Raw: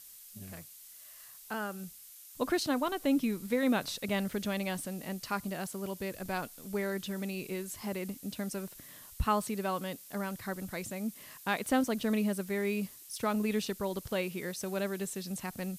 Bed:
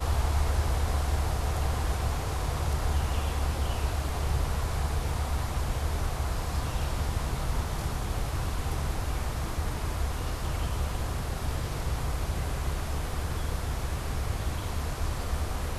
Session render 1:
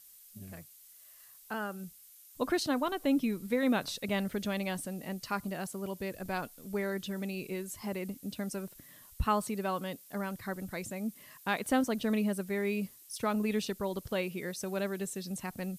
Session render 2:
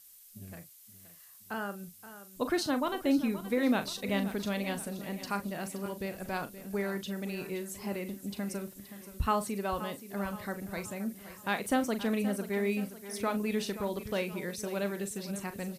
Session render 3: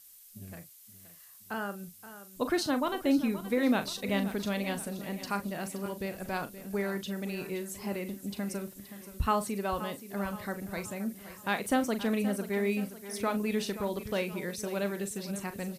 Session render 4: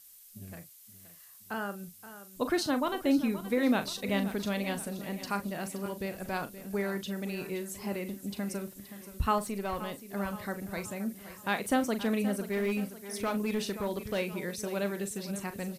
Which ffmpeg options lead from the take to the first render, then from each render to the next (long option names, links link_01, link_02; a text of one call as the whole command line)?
ffmpeg -i in.wav -af "afftdn=noise_reduction=6:noise_floor=-52" out.wav
ffmpeg -i in.wav -filter_complex "[0:a]asplit=2[link_01][link_02];[link_02]adelay=40,volume=-11dB[link_03];[link_01][link_03]amix=inputs=2:normalize=0,aecho=1:1:524|1048|1572|2096|2620:0.211|0.104|0.0507|0.0249|0.0122" out.wav
ffmpeg -i in.wav -af "volume=1dB" out.wav
ffmpeg -i in.wav -filter_complex "[0:a]asettb=1/sr,asplit=3[link_01][link_02][link_03];[link_01]atrim=end=9.384[link_04];[link_02]atrim=start=9.38:end=10.13,asetpts=PTS-STARTPTS,afade=type=in:duration=0.004:curve=qsin,afade=type=out:start_time=0.746:duration=0.004:curve=qsin,aeval=exprs='(tanh(17.8*val(0)+0.4)-tanh(0.4))/17.8':channel_layout=same[link_05];[link_03]atrim=start=10.126[link_06];[link_04][link_05]acrossfade=duration=0.004:curve1=hsin:curve2=qsin[link_07];[link_07][link_06]acrossfade=duration=0.004:curve1=qsin:curve2=hsin,asplit=3[link_08][link_09][link_10];[link_08]afade=type=out:start_time=12.36:duration=0.02[link_11];[link_09]asoftclip=type=hard:threshold=-25.5dB,afade=type=in:start_time=12.36:duration=0.02,afade=type=out:start_time=14.18:duration=0.02[link_12];[link_10]afade=type=in:start_time=14.18:duration=0.02[link_13];[link_11][link_12][link_13]amix=inputs=3:normalize=0" out.wav